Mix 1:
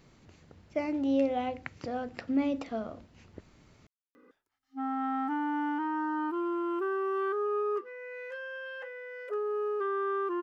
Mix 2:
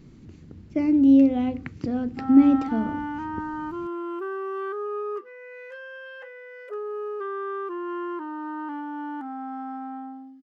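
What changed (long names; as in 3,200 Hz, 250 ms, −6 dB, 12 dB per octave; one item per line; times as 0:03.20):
speech: add low shelf with overshoot 430 Hz +11 dB, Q 1.5
background: entry −2.60 s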